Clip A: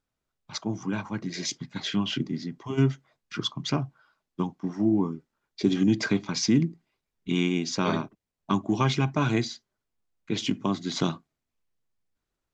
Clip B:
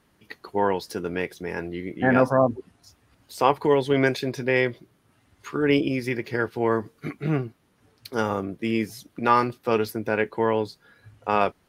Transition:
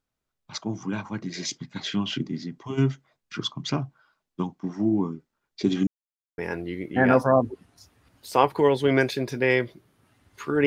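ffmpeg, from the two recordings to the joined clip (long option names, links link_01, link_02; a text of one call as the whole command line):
ffmpeg -i cue0.wav -i cue1.wav -filter_complex "[0:a]apad=whole_dur=10.66,atrim=end=10.66,asplit=2[link_01][link_02];[link_01]atrim=end=5.87,asetpts=PTS-STARTPTS,afade=type=out:start_time=5.866:duration=0.004:curve=hsin[link_03];[link_02]atrim=start=5.87:end=6.38,asetpts=PTS-STARTPTS,volume=0[link_04];[1:a]atrim=start=1.44:end=5.72,asetpts=PTS-STARTPTS,afade=type=in:duration=0.004:curve=hsin[link_05];[link_03][link_04][link_05]concat=n=3:v=0:a=1" out.wav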